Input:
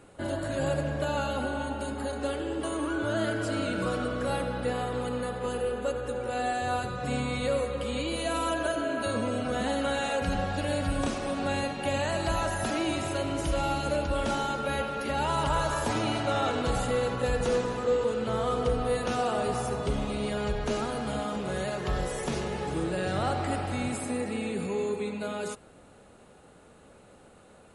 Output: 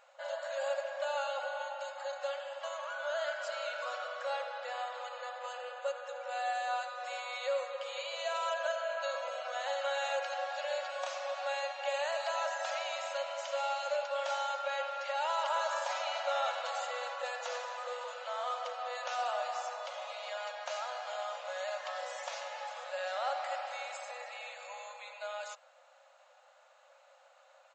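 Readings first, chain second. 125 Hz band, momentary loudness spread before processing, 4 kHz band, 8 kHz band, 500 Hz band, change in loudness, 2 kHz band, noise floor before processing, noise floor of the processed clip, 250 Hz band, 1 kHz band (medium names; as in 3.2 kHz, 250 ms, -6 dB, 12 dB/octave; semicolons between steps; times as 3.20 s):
under -40 dB, 4 LU, -4.0 dB, -8.0 dB, -7.5 dB, -7.0 dB, -4.0 dB, -55 dBFS, -63 dBFS, under -40 dB, -4.0 dB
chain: resampled via 16 kHz; brick-wall FIR high-pass 510 Hz; trim -4 dB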